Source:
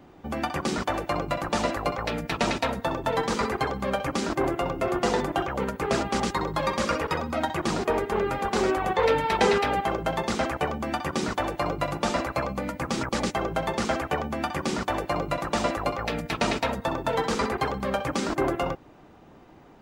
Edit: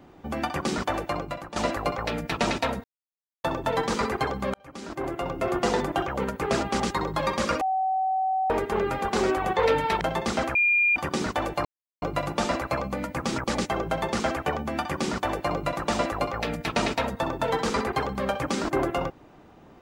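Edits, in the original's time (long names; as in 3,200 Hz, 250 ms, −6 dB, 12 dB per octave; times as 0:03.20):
0:01.00–0:01.56: fade out, to −14.5 dB
0:02.84: splice in silence 0.60 s
0:03.94–0:04.90: fade in linear
0:07.01–0:07.90: beep over 759 Hz −22 dBFS
0:09.41–0:10.03: remove
0:10.57–0:10.98: beep over 2,410 Hz −18 dBFS
0:11.67: splice in silence 0.37 s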